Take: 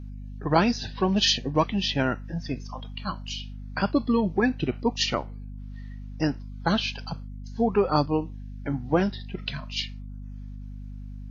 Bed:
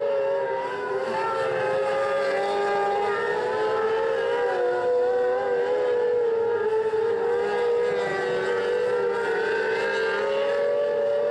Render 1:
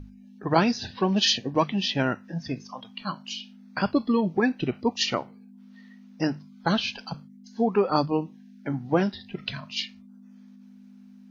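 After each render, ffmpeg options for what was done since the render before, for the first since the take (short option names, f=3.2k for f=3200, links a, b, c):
-af "bandreject=f=50:t=h:w=6,bandreject=f=100:t=h:w=6,bandreject=f=150:t=h:w=6"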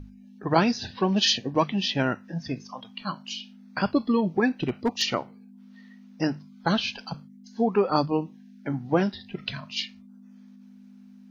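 -filter_complex "[0:a]asettb=1/sr,asplit=3[a][b][c];[a]atrim=end=4.474[d];[b]atrim=start=4.47:end=5.02,asetpts=PTS-STARTPTS,afade=t=in:d=0.004:c=qsin,afade=t=out:st=0.546:d=0.004:c=qsin,asoftclip=type=hard:threshold=-18dB[e];[c]atrim=start=5.016[f];[d][e]acrossfade=d=0.004:c1=hsin:c2=qsin[g];[g][f]acrossfade=d=0.004:c1=qsin:c2=hsin"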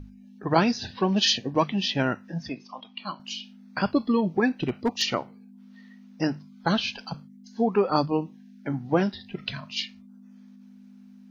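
-filter_complex "[0:a]asettb=1/sr,asplit=3[a][b][c];[a]atrim=end=2.494[d];[b]atrim=start=2.49:end=3.2,asetpts=PTS-STARTPTS,afade=t=in:d=0.004:c=qsin,afade=t=out:st=0.706:d=0.004:c=qsin,highpass=250,equalizer=f=470:t=q:w=4:g=-5,equalizer=f=1.6k:t=q:w=4:g=-9,equalizer=f=2.5k:t=q:w=4:g=3,lowpass=f=4.7k:w=0.5412,lowpass=f=4.7k:w=1.3066[e];[c]atrim=start=3.196[f];[d][e]acrossfade=d=0.004:c1=hsin:c2=qsin[g];[g][f]acrossfade=d=0.004:c1=qsin:c2=hsin"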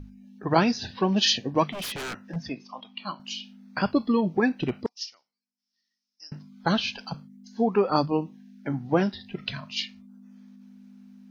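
-filter_complex "[0:a]asettb=1/sr,asplit=3[a][b][c];[a]atrim=end=1.714[d];[b]atrim=start=1.71:end=2.36,asetpts=PTS-STARTPTS,afade=t=in:d=0.004:c=qsin,afade=t=out:st=0.646:d=0.004:c=qsin,aeval=exprs='0.0376*(abs(mod(val(0)/0.0376+3,4)-2)-1)':c=same[e];[c]atrim=start=2.356[f];[d][e]acrossfade=d=0.004:c1=hsin:c2=qsin[g];[g][f]acrossfade=d=0.004:c1=qsin:c2=hsin,asettb=1/sr,asplit=3[h][i][j];[h]atrim=end=4.864[k];[i]atrim=start=4.86:end=6.32,asetpts=PTS-STARTPTS,afade=t=in:d=0.004:c=qsin,afade=t=out:st=1.456:d=0.004:c=qsin,bandpass=f=5.3k:t=q:w=10[l];[j]atrim=start=6.316[m];[k][l]acrossfade=d=0.004:c1=hsin:c2=qsin[n];[n][m]acrossfade=d=0.004:c1=qsin:c2=hsin"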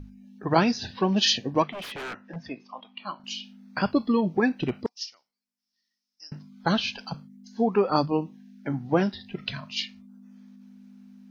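-filter_complex "[0:a]asettb=1/sr,asplit=3[a][b][c];[a]atrim=end=1.624[d];[b]atrim=start=1.62:end=3.24,asetpts=PTS-STARTPTS,afade=t=in:d=0.004:c=qsin,afade=t=out:st=1.616:d=0.004:c=qsin,bass=f=250:g=-7,treble=f=4k:g=-12[e];[c]atrim=start=3.236[f];[d][e]acrossfade=d=0.004:c1=hsin:c2=qsin[g];[g][f]acrossfade=d=0.004:c1=qsin:c2=hsin"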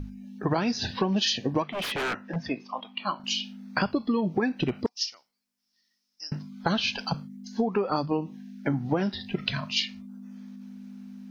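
-filter_complex "[0:a]asplit=2[a][b];[b]alimiter=limit=-16dB:level=0:latency=1:release=168,volume=1dB[c];[a][c]amix=inputs=2:normalize=0,acompressor=threshold=-22dB:ratio=10"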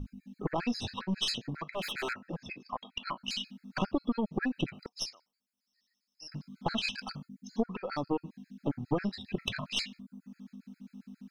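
-af "aeval=exprs='(tanh(5.62*val(0)+0.6)-tanh(0.6))/5.62':c=same,afftfilt=real='re*gt(sin(2*PI*7.4*pts/sr)*(1-2*mod(floor(b*sr/1024/1300),2)),0)':imag='im*gt(sin(2*PI*7.4*pts/sr)*(1-2*mod(floor(b*sr/1024/1300),2)),0)':win_size=1024:overlap=0.75"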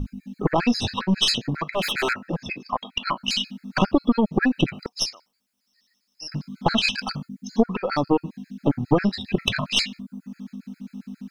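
-af "volume=11.5dB"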